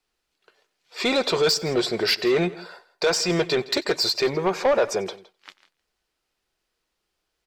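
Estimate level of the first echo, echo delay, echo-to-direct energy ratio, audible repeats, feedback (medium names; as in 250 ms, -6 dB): -22.5 dB, 92 ms, -17.5 dB, 2, no regular repeats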